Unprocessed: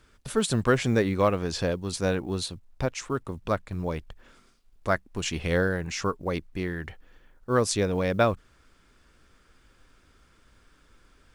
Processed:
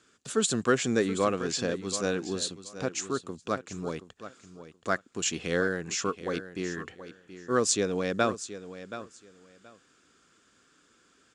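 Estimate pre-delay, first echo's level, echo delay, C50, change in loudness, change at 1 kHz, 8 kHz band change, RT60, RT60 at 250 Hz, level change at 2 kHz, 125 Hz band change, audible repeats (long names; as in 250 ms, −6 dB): no reverb audible, −13.0 dB, 726 ms, no reverb audible, −2.0 dB, −2.5 dB, +4.5 dB, no reverb audible, no reverb audible, −1.5 dB, −8.5 dB, 2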